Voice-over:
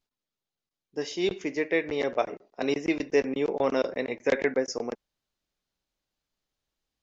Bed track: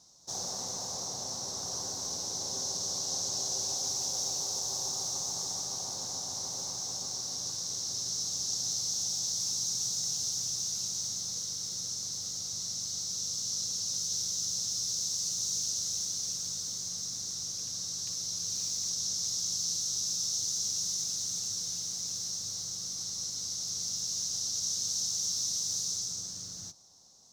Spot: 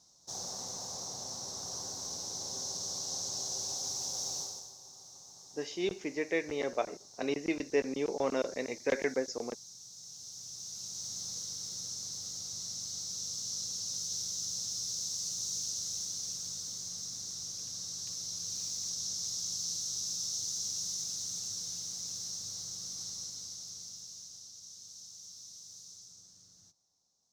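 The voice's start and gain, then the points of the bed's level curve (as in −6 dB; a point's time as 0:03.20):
4.60 s, −6.0 dB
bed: 0:04.40 −4 dB
0:04.76 −18.5 dB
0:09.87 −18.5 dB
0:11.22 −4 dB
0:23.08 −4 dB
0:24.57 −18 dB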